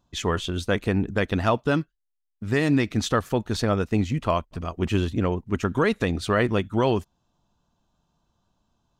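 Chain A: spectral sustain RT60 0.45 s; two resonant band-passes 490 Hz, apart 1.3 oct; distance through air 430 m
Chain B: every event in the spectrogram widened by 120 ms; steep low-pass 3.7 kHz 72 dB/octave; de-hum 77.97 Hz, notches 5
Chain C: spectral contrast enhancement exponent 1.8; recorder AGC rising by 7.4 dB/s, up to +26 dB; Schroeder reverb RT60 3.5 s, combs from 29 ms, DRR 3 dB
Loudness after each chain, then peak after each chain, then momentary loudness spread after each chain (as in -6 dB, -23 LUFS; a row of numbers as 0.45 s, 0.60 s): -34.5 LUFS, -20.0 LUFS, -24.0 LUFS; -19.5 dBFS, -3.0 dBFS, -9.0 dBFS; 9 LU, 5 LU, 10 LU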